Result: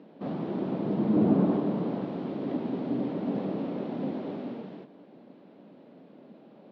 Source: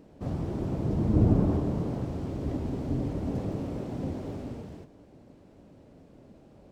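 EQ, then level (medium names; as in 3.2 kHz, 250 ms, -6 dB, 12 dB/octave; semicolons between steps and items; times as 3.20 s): elliptic band-pass 190–3800 Hz, stop band 50 dB; +3.5 dB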